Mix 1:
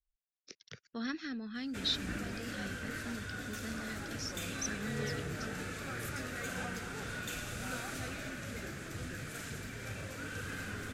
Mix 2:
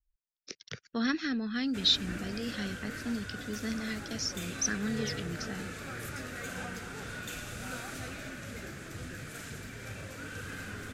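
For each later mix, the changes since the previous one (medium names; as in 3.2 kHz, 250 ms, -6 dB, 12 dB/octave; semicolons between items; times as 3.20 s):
speech +8.0 dB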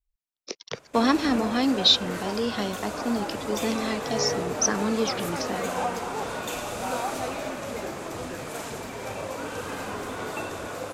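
background: entry -0.80 s; master: remove FFT filter 120 Hz 0 dB, 1 kHz -22 dB, 1.5 kHz -2 dB, 2.5 kHz -7 dB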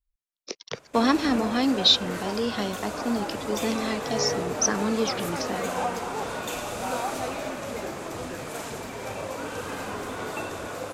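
no change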